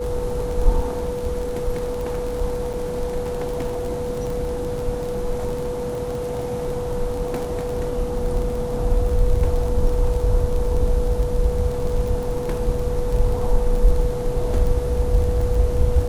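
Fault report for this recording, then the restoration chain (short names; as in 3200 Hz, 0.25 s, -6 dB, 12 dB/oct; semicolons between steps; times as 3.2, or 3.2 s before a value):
crackle 26/s -25 dBFS
tone 490 Hz -25 dBFS
2.73–2.74 gap 7 ms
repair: de-click; notch 490 Hz, Q 30; interpolate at 2.73, 7 ms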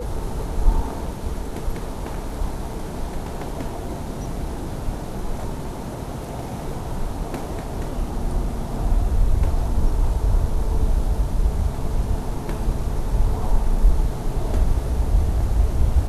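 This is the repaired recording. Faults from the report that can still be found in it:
none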